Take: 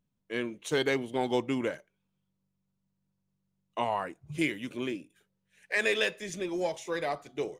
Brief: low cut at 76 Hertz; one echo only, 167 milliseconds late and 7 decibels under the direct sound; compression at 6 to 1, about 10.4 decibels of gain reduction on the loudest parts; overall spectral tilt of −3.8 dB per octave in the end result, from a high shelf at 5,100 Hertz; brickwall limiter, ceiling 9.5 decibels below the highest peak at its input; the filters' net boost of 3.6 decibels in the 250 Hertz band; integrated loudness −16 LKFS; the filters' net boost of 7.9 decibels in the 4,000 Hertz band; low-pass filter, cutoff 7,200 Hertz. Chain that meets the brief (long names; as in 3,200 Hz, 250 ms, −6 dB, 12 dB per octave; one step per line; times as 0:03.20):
high-pass filter 76 Hz
low-pass filter 7,200 Hz
parametric band 250 Hz +4.5 dB
parametric band 4,000 Hz +8 dB
high-shelf EQ 5,100 Hz +6 dB
downward compressor 6 to 1, threshold −31 dBFS
brickwall limiter −26.5 dBFS
single-tap delay 167 ms −7 dB
level +21.5 dB